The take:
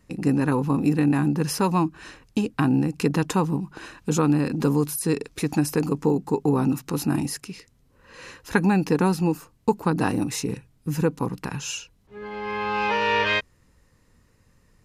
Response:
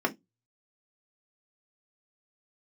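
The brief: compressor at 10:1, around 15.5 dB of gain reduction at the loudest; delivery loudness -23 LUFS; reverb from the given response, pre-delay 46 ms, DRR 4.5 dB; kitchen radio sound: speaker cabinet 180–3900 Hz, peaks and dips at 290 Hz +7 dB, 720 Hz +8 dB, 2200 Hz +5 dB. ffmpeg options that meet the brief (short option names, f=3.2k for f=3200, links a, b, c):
-filter_complex "[0:a]acompressor=threshold=-32dB:ratio=10,asplit=2[a][b];[1:a]atrim=start_sample=2205,adelay=46[c];[b][c]afir=irnorm=-1:irlink=0,volume=-14.5dB[d];[a][d]amix=inputs=2:normalize=0,highpass=180,equalizer=f=290:t=q:w=4:g=7,equalizer=f=720:t=q:w=4:g=8,equalizer=f=2.2k:t=q:w=4:g=5,lowpass=f=3.9k:w=0.5412,lowpass=f=3.9k:w=1.3066,volume=9dB"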